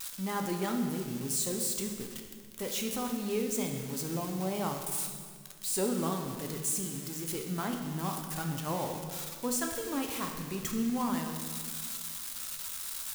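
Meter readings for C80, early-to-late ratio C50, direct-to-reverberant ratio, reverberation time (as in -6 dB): 6.5 dB, 5.0 dB, 2.5 dB, 1.8 s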